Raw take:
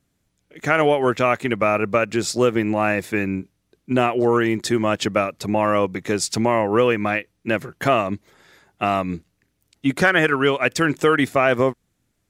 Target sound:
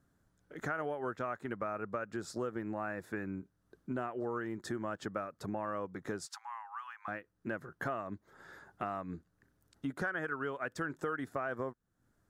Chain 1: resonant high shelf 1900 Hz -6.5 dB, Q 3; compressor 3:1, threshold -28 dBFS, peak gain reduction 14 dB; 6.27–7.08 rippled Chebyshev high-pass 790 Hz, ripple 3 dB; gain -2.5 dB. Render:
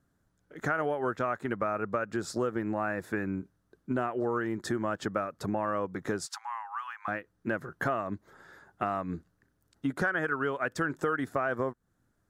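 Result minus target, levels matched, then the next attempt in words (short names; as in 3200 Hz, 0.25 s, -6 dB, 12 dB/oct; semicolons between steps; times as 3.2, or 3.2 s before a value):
compressor: peak gain reduction -7 dB
resonant high shelf 1900 Hz -6.5 dB, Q 3; compressor 3:1, threshold -38.5 dBFS, peak gain reduction 21 dB; 6.27–7.08 rippled Chebyshev high-pass 790 Hz, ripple 3 dB; gain -2.5 dB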